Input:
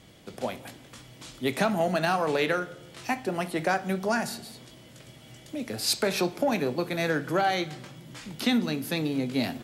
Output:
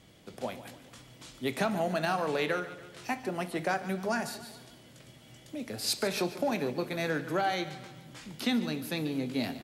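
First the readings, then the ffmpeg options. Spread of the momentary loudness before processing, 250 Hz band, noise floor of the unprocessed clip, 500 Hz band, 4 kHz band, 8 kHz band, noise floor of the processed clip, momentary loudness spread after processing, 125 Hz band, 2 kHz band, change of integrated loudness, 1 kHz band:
18 LU, -4.5 dB, -51 dBFS, -4.5 dB, -4.5 dB, -4.5 dB, -56 dBFS, 17 LU, -4.5 dB, -4.5 dB, -4.5 dB, -4.5 dB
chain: -af "aecho=1:1:144|288|432|576|720:0.178|0.0889|0.0445|0.0222|0.0111,volume=-4.5dB"

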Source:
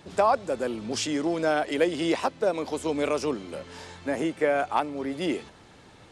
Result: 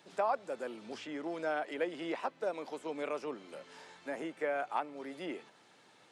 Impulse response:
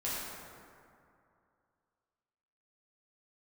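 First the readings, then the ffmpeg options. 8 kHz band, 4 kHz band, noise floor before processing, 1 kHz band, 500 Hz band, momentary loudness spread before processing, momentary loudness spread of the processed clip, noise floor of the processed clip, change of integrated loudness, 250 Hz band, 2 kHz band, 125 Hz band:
-20.0 dB, -14.5 dB, -53 dBFS, -9.5 dB, -11.0 dB, 10 LU, 12 LU, -63 dBFS, -11.0 dB, -13.5 dB, -9.0 dB, -18.5 dB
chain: -filter_complex "[0:a]acrossover=split=2700[a][b];[b]acompressor=threshold=-52dB:ratio=6[c];[a][c]amix=inputs=2:normalize=0,highpass=f=130:w=0.5412,highpass=f=130:w=1.3066,lowshelf=f=330:g=-11.5,bandreject=f=1.1k:w=27,volume=-7.5dB"

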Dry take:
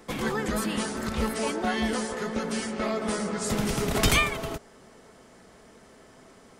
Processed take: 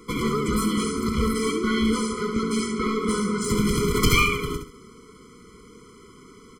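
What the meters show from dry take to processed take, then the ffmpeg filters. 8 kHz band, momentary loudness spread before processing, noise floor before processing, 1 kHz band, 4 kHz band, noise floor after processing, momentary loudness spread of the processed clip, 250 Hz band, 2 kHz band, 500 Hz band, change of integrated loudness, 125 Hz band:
+2.0 dB, 8 LU, -54 dBFS, +3.0 dB, +2.5 dB, -49 dBFS, 6 LU, +6.0 dB, +2.0 dB, +3.5 dB, +4.0 dB, +5.5 dB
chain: -af "aecho=1:1:68|136|204|272:0.447|0.134|0.0402|0.0121,aeval=exprs='clip(val(0),-1,0.0631)':c=same,afftfilt=real='re*eq(mod(floor(b*sr/1024/490),2),0)':imag='im*eq(mod(floor(b*sr/1024/490),2),0)':win_size=1024:overlap=0.75,volume=5.5dB"

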